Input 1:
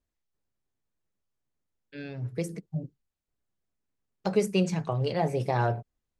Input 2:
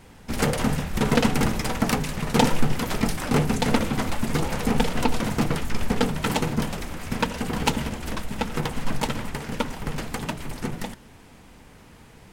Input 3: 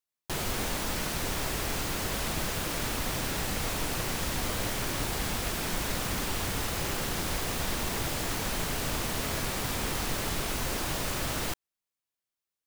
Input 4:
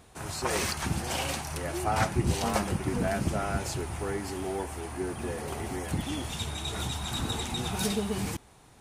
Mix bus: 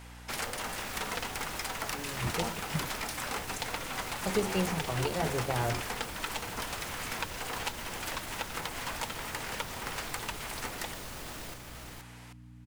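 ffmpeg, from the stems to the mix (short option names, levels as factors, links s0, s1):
-filter_complex "[0:a]volume=0.531,asplit=2[s0][s1];[1:a]highpass=780,acompressor=threshold=0.0158:ratio=6,volume=1.26,asplit=2[s2][s3];[s3]volume=0.133[s4];[2:a]aeval=exprs='val(0)+0.00794*(sin(2*PI*60*n/s)+sin(2*PI*2*60*n/s)/2+sin(2*PI*3*60*n/s)/3+sin(2*PI*4*60*n/s)/4+sin(2*PI*5*60*n/s)/5)':c=same,alimiter=level_in=1.68:limit=0.0631:level=0:latency=1,volume=0.596,volume=0.501,asplit=2[s5][s6];[s6]volume=0.631[s7];[3:a]volume=0.398[s8];[s1]apad=whole_len=388481[s9];[s8][s9]sidechaingate=range=0.0224:threshold=0.0112:ratio=16:detection=peak[s10];[s4][s7]amix=inputs=2:normalize=0,aecho=0:1:474:1[s11];[s0][s2][s5][s10][s11]amix=inputs=5:normalize=0"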